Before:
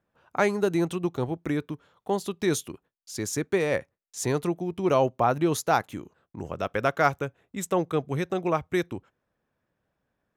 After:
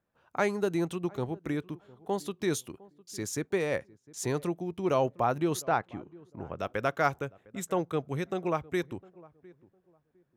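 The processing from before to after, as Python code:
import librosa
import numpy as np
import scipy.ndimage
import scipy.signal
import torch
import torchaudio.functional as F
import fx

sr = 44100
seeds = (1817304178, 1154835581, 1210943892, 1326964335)

p1 = fx.lowpass(x, sr, hz=2700.0, slope=12, at=(5.62, 6.59))
p2 = p1 + fx.echo_filtered(p1, sr, ms=706, feedback_pct=25, hz=910.0, wet_db=-21.5, dry=0)
y = p2 * 10.0 ** (-4.5 / 20.0)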